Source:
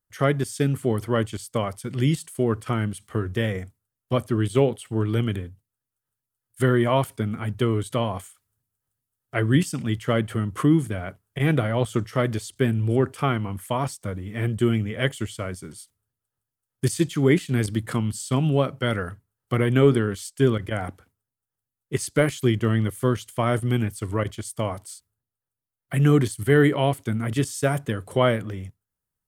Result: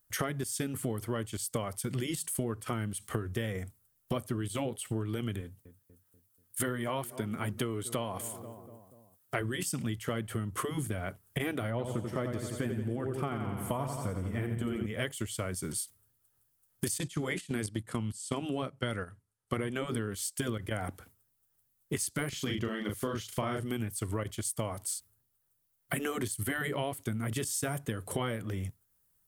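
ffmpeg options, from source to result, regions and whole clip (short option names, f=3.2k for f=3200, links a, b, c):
-filter_complex "[0:a]asettb=1/sr,asplit=3[a][b][c];[a]atrim=end=5.414[d];[b]atrim=start=5.41:end=9.41,asetpts=PTS-STARTPTS,afade=t=in:d=0.004:c=qsin,afade=t=out:st=3.996:d=0.004:c=qsin,highpass=f=160:p=1,asplit=2[e][f];[f]adelay=242,lowpass=f=1.2k:p=1,volume=-21dB,asplit=2[g][h];[h]adelay=242,lowpass=f=1.2k:p=1,volume=0.54,asplit=2[i][j];[j]adelay=242,lowpass=f=1.2k:p=1,volume=0.54,asplit=2[k][l];[l]adelay=242,lowpass=f=1.2k:p=1,volume=0.54[m];[e][g][i][k][m]amix=inputs=5:normalize=0,atrim=end_sample=176400[n];[c]atrim=start=9.406[o];[d][n]acrossfade=d=0.004:c1=hsin:c2=qsin[p];[p][o]acrossfade=d=0.004:c1=qsin:c2=hsin,asettb=1/sr,asplit=3[q][r][s];[q]atrim=end=11.704[t];[r]atrim=start=11.7:end=14.86,asetpts=PTS-STARTPTS,afade=t=in:d=0.004:c=qsin,afade=t=out:st=3.156:d=0.004:c=qsin,highshelf=f=2.1k:g=-9,aecho=1:1:87|174|261|348|435|522|609:0.447|0.255|0.145|0.0827|0.0472|0.0269|0.0153,atrim=end_sample=139356[u];[s]atrim=start=14.856[v];[t][u]acrossfade=d=0.004:c1=hsin:c2=qsin[w];[w][v]acrossfade=d=0.004:c1=qsin:c2=hsin,asettb=1/sr,asplit=3[x][y][z];[x]atrim=end=16.984[aa];[y]atrim=start=16.98:end=19.89,asetpts=PTS-STARTPTS,afade=t=in:d=0.004:c=qsin,afade=t=out:st=2.906:d=0.004:c=qsin,lowpass=f=11k:w=0.5412,lowpass=f=11k:w=1.3066,agate=range=-11dB:threshold=-29dB:ratio=16:release=100:detection=peak[ab];[z]atrim=start=19.886[ac];[aa][ab]acrossfade=d=0.004:c1=hsin:c2=qsin[ad];[ad][ac]acrossfade=d=0.004:c1=qsin:c2=hsin,asettb=1/sr,asplit=3[ae][af][ag];[ae]atrim=end=22.294[ah];[af]atrim=start=22.29:end=23.64,asetpts=PTS-STARTPTS,afade=t=in:d=0.004:c=qsin,afade=t=out:st=1.346:d=0.004:c=qsin,highshelf=f=7k:t=q:w=1.5:g=-7.5,asplit=2[ai][aj];[aj]adelay=38,volume=-3dB[ak];[ai][ak]amix=inputs=2:normalize=0,atrim=end_sample=59535[al];[ag]atrim=start=23.636[am];[ah][al]acrossfade=d=0.004:c1=hsin:c2=qsin[an];[an][am]acrossfade=d=0.004:c1=qsin:c2=hsin,afftfilt=real='re*lt(hypot(re,im),0.794)':imag='im*lt(hypot(re,im),0.794)':win_size=1024:overlap=0.75,highshelf=f=8.1k:g=11.5,acompressor=threshold=-37dB:ratio=8,volume=6dB"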